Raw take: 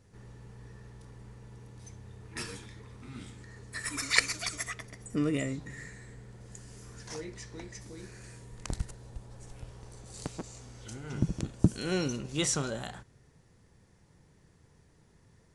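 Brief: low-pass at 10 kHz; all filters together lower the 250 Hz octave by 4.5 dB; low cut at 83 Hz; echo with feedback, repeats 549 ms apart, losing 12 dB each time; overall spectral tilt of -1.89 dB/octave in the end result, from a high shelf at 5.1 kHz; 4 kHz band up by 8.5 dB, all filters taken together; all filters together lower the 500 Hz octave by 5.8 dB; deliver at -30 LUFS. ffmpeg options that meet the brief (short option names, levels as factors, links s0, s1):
-af "highpass=83,lowpass=10000,equalizer=f=250:t=o:g=-4.5,equalizer=f=500:t=o:g=-6,equalizer=f=4000:t=o:g=7.5,highshelf=f=5100:g=6,aecho=1:1:549|1098|1647:0.251|0.0628|0.0157,volume=1.06"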